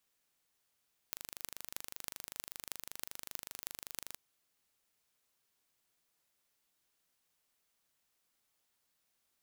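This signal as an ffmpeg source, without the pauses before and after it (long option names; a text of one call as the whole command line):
ffmpeg -f lavfi -i "aevalsrc='0.299*eq(mod(n,1750),0)*(0.5+0.5*eq(mod(n,14000),0))':duration=3.05:sample_rate=44100" out.wav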